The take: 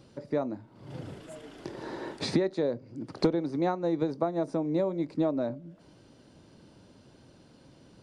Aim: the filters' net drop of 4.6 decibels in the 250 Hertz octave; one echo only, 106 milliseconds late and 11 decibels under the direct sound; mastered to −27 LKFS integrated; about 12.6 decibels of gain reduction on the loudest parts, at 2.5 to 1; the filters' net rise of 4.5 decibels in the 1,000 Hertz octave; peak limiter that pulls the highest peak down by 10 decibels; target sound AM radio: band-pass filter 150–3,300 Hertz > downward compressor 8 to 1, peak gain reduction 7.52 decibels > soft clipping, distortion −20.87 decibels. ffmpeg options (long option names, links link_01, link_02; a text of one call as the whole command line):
ffmpeg -i in.wav -af "equalizer=frequency=250:width_type=o:gain=-7,equalizer=frequency=1000:width_type=o:gain=7,acompressor=threshold=-41dB:ratio=2.5,alimiter=level_in=8.5dB:limit=-24dB:level=0:latency=1,volume=-8.5dB,highpass=150,lowpass=3300,aecho=1:1:106:0.282,acompressor=threshold=-43dB:ratio=8,asoftclip=threshold=-38.5dB,volume=23.5dB" out.wav